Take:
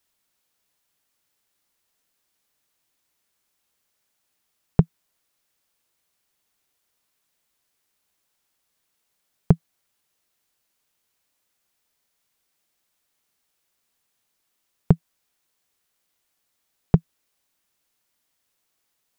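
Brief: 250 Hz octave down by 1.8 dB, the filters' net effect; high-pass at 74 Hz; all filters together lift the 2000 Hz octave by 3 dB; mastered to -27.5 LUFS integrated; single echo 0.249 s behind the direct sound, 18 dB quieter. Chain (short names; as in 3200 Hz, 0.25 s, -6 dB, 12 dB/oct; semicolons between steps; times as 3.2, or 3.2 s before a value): HPF 74 Hz; bell 250 Hz -3.5 dB; bell 2000 Hz +4 dB; echo 0.249 s -18 dB; gain -2 dB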